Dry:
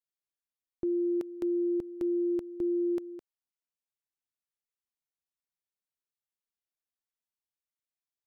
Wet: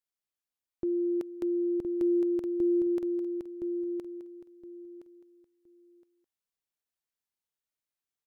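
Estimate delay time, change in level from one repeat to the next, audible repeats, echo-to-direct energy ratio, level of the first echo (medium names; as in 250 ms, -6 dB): 1017 ms, -13.0 dB, 3, -5.0 dB, -5.0 dB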